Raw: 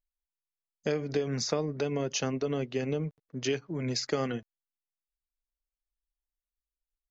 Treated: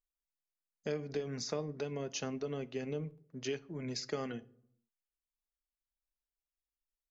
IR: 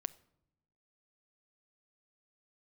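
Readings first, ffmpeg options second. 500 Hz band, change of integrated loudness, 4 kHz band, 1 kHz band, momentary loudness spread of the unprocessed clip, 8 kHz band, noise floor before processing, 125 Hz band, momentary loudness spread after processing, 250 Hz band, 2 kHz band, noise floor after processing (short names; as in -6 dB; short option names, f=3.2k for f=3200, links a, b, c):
-7.0 dB, -7.5 dB, -8.0 dB, -8.0 dB, 5 LU, n/a, under -85 dBFS, -8.5 dB, 5 LU, -8.0 dB, -7.5 dB, under -85 dBFS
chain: -filter_complex "[1:a]atrim=start_sample=2205,asetrate=61740,aresample=44100[a];[0:a][a]afir=irnorm=-1:irlink=0,volume=-3.5dB"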